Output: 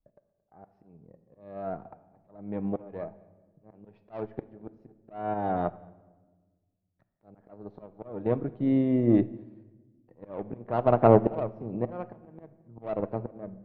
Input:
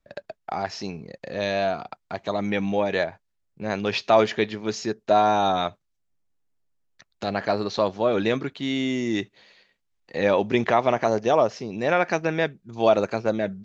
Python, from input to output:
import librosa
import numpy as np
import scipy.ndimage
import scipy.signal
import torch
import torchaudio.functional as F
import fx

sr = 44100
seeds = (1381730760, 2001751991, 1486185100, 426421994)

p1 = scipy.signal.sosfilt(scipy.signal.cheby1(2, 1.0, 710.0, 'lowpass', fs=sr, output='sos'), x)
p2 = fx.low_shelf(p1, sr, hz=230.0, db=7.0)
p3 = fx.cheby_harmonics(p2, sr, harmonics=(3, 4, 8), levels_db=(-19, -29, -34), full_scale_db=-5.5)
p4 = fx.level_steps(p3, sr, step_db=12)
p5 = p3 + (p4 * librosa.db_to_amplitude(0.0))
p6 = fx.auto_swell(p5, sr, attack_ms=696.0)
p7 = p6 + fx.echo_single(p6, sr, ms=224, db=-22.5, dry=0)
p8 = fx.room_shoebox(p7, sr, seeds[0], volume_m3=1200.0, walls='mixed', distance_m=0.51)
p9 = fx.upward_expand(p8, sr, threshold_db=-42.0, expansion=1.5)
y = p9 * librosa.db_to_amplitude(4.0)